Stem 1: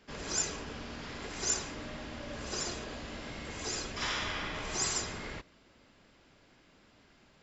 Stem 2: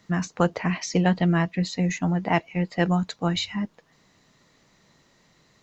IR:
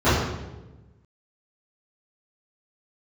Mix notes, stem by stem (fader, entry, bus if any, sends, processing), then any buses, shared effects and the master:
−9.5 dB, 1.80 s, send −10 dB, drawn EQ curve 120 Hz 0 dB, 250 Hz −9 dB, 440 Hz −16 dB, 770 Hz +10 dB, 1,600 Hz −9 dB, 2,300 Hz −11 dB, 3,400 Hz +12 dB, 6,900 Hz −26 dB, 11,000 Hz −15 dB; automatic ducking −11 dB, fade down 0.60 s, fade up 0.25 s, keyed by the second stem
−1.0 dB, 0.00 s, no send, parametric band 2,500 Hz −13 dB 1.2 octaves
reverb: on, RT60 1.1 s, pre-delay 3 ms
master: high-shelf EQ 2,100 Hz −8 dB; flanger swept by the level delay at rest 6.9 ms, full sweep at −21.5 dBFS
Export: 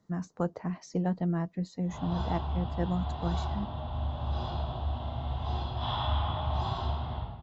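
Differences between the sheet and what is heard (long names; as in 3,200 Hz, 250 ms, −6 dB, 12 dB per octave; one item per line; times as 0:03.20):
stem 2 −1.0 dB → −8.0 dB
master: missing flanger swept by the level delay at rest 6.9 ms, full sweep at −21.5 dBFS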